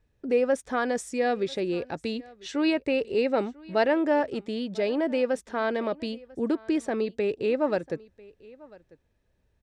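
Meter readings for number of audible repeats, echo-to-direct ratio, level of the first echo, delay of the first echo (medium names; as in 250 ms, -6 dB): 1, -23.0 dB, -23.0 dB, 995 ms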